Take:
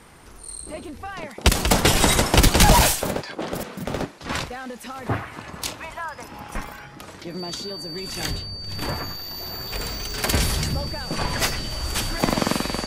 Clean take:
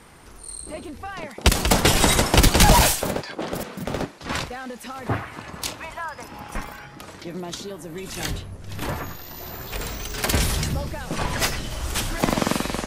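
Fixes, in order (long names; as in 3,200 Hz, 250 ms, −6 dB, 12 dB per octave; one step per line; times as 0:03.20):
notch filter 4,600 Hz, Q 30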